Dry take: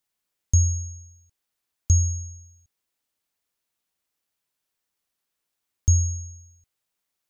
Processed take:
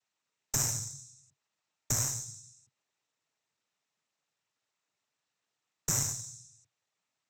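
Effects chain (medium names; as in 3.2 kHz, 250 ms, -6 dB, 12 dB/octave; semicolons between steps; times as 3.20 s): noise-vocoded speech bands 12; peak limiter -20 dBFS, peak gain reduction 9.5 dB; Chebyshev shaper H 2 -6 dB, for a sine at -20 dBFS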